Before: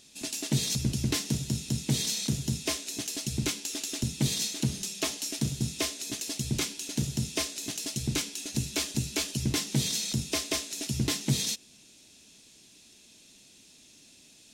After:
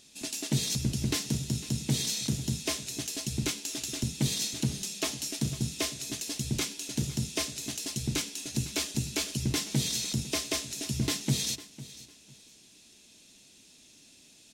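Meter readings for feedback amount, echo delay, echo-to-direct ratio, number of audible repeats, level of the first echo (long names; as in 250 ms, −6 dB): 25%, 502 ms, −17.0 dB, 2, −17.0 dB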